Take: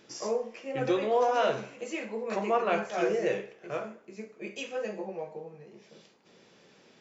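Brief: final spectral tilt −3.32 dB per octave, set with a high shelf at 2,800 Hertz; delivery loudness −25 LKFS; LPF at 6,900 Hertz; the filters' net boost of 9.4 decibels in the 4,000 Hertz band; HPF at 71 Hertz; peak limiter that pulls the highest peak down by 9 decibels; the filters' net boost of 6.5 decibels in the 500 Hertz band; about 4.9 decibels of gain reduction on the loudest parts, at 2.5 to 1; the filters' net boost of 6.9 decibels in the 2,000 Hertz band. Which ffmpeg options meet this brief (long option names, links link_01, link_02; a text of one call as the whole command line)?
ffmpeg -i in.wav -af "highpass=71,lowpass=6900,equalizer=frequency=500:width_type=o:gain=7,equalizer=frequency=2000:width_type=o:gain=4,highshelf=frequency=2800:gain=7,equalizer=frequency=4000:width_type=o:gain=6,acompressor=threshold=-23dB:ratio=2.5,volume=7dB,alimiter=limit=-15dB:level=0:latency=1" out.wav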